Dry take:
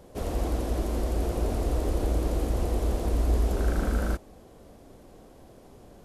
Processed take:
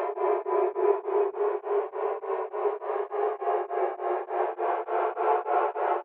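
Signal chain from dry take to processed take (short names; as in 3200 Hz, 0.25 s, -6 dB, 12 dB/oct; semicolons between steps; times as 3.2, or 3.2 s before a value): negative-ratio compressor -31 dBFS, ratio -1; frequency shift +240 Hz; chorus voices 2, 0.71 Hz, delay 29 ms, depth 2.1 ms; mistuned SSB +110 Hz 180–2400 Hz; doubler 14 ms -2.5 dB; on a send: echo 97 ms -4.5 dB; on the sum: Paulstretch 21×, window 0.10 s, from 1.1; beating tremolo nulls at 3.4 Hz; gain +6.5 dB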